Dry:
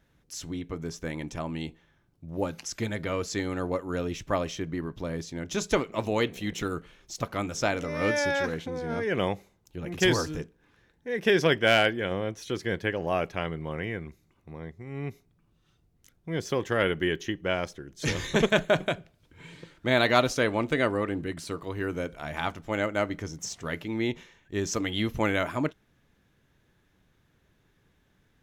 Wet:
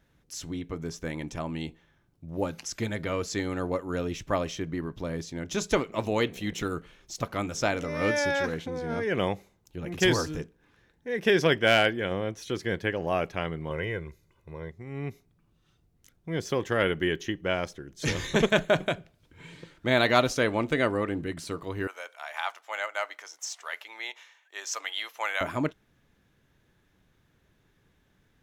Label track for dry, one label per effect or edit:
13.700000	14.710000	comb 2 ms, depth 59%
21.870000	25.410000	high-pass 720 Hz 24 dB/octave

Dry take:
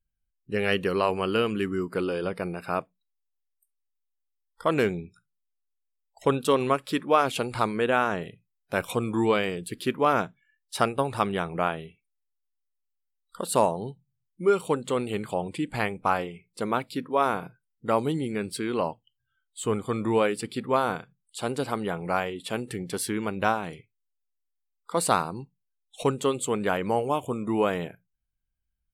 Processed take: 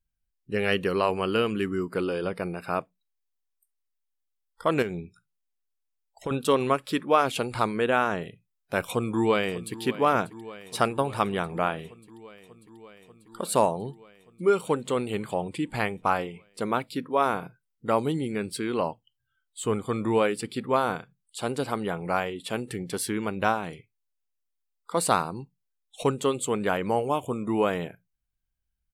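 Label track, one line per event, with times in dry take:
4.820000	6.310000	compression 4:1, threshold -28 dBFS
8.810000	9.810000	echo throw 590 ms, feedback 80%, level -16 dB

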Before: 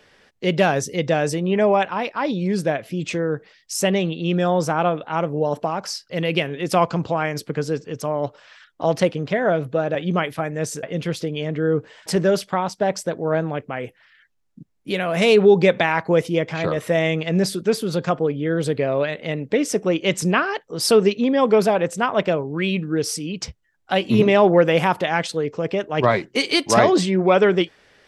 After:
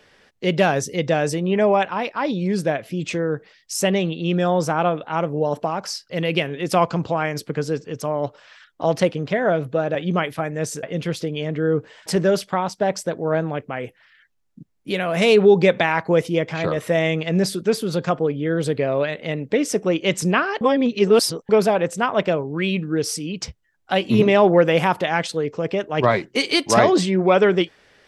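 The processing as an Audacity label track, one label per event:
20.610000	21.490000	reverse

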